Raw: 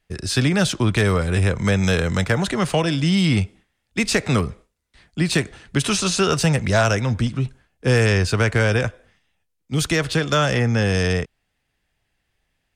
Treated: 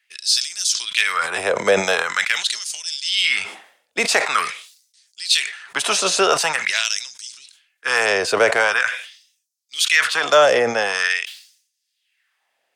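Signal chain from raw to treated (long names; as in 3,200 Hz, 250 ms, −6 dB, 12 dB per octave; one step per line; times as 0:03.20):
auto-filter high-pass sine 0.45 Hz 530–6,000 Hz
level that may fall only so fast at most 100 dB per second
level +3 dB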